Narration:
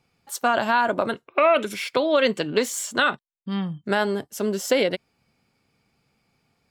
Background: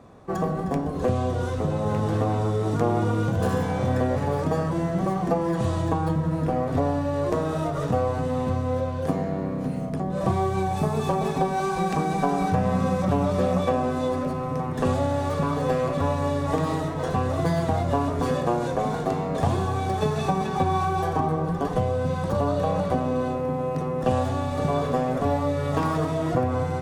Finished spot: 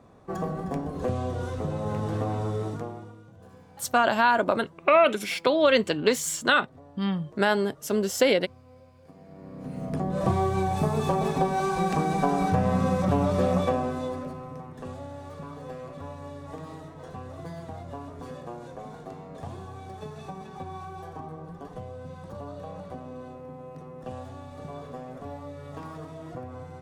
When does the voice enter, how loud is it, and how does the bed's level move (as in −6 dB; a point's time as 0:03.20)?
3.50 s, −0.5 dB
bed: 0:02.62 −5 dB
0:03.24 −27 dB
0:09.09 −27 dB
0:09.94 −1 dB
0:13.60 −1 dB
0:14.83 −15.5 dB